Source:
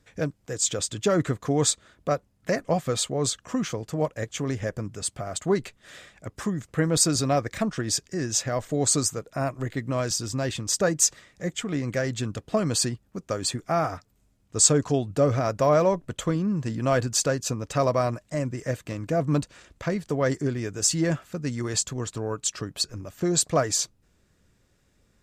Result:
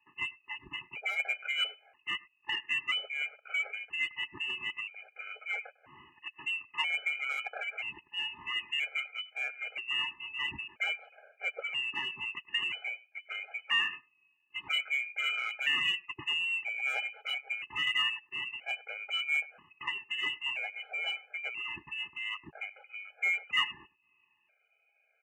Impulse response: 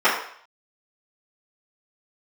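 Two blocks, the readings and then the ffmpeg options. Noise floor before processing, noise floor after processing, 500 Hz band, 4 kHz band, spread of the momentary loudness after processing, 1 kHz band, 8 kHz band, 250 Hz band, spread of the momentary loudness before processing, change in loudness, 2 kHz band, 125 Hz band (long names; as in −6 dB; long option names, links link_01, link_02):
−66 dBFS, −73 dBFS, −28.5 dB, −0.5 dB, 11 LU, −12.5 dB, below −30 dB, −32.0 dB, 10 LU, −7.0 dB, +6.0 dB, below −30 dB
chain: -filter_complex "[0:a]afftfilt=real='re*pow(10,13/40*sin(2*PI*(0.8*log(max(b,1)*sr/1024/100)/log(2)-(1.6)*(pts-256)/sr)))':imag='im*pow(10,13/40*sin(2*PI*(0.8*log(max(b,1)*sr/1024/100)/log(2)-(1.6)*(pts-256)/sr)))':win_size=1024:overlap=0.75,aeval=exprs='val(0)*sin(2*PI*480*n/s)':channel_layout=same,bandreject=frequency=1100:width=9.3,acrossover=split=310|1300[link_01][link_02][link_03];[link_02]acrusher=bits=5:mode=log:mix=0:aa=0.000001[link_04];[link_01][link_04][link_03]amix=inputs=3:normalize=0,asplit=2[link_05][link_06];[link_06]adelay=100,highpass=300,lowpass=3400,asoftclip=type=hard:threshold=-13dB,volume=-22dB[link_07];[link_05][link_07]amix=inputs=2:normalize=0,crystalizer=i=3.5:c=0,lowpass=frequency=2600:width_type=q:width=0.5098,lowpass=frequency=2600:width_type=q:width=0.6013,lowpass=frequency=2600:width_type=q:width=0.9,lowpass=frequency=2600:width_type=q:width=2.563,afreqshift=-3000,asplit=2[link_08][link_09];[link_09]asoftclip=type=tanh:threshold=-21dB,volume=-5dB[link_10];[link_08][link_10]amix=inputs=2:normalize=0,highpass=77,afftfilt=real='re*gt(sin(2*PI*0.51*pts/sr)*(1-2*mod(floor(b*sr/1024/420),2)),0)':imag='im*gt(sin(2*PI*0.51*pts/sr)*(1-2*mod(floor(b*sr/1024/420),2)),0)':win_size=1024:overlap=0.75,volume=-7.5dB"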